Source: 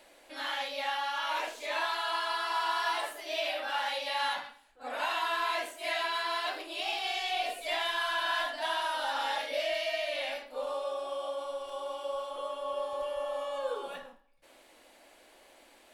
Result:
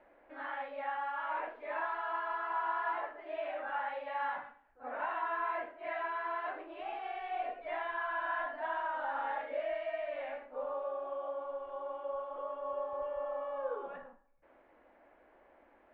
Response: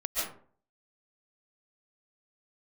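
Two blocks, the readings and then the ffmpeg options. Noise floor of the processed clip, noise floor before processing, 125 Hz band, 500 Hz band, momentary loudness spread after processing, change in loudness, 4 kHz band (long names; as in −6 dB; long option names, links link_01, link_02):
−65 dBFS, −60 dBFS, can't be measured, −3.0 dB, 7 LU, −5.0 dB, −23.5 dB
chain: -af "lowpass=frequency=1800:width=0.5412,lowpass=frequency=1800:width=1.3066,equalizer=frequency=70:width=1.5:gain=5,volume=-3dB"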